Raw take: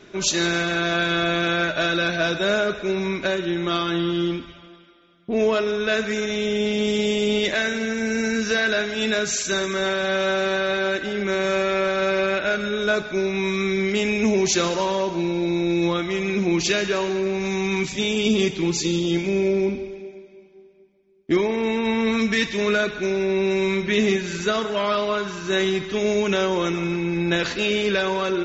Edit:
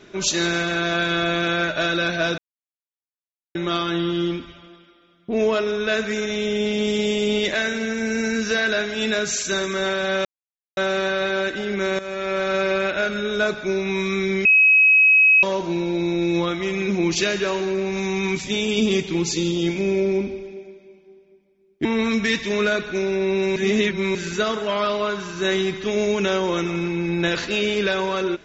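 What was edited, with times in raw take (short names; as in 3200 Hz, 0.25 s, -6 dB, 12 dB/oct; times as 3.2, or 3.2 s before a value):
2.38–3.55 mute
10.25 insert silence 0.52 s
11.47–11.94 fade in linear, from -14 dB
13.93–14.91 bleep 2550 Hz -10.5 dBFS
21.33–21.93 cut
23.64–24.23 reverse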